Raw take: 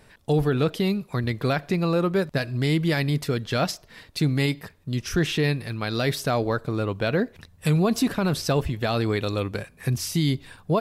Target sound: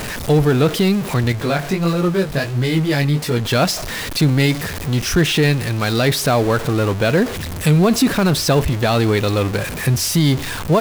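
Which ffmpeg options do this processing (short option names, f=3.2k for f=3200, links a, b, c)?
-filter_complex "[0:a]aeval=exprs='val(0)+0.5*0.0447*sgn(val(0))':c=same,asettb=1/sr,asplit=3[a][b][c];[a]atrim=end=1.324[d];[b]atrim=start=1.32:end=3.45,asetpts=PTS-STARTPTS,afade=t=in:d=0.004:c=qsin,afade=t=out:st=2.126:d=0.004:c=qsin,flanger=delay=16.5:depth=5.1:speed=1.5[e];[c]atrim=start=3.446[f];[d][e]acrossfade=d=0.004:c1=hsin:c2=qsin[g];[g][f]acrossfade=d=0.004:c1=qsin:c2=hsin,volume=6dB"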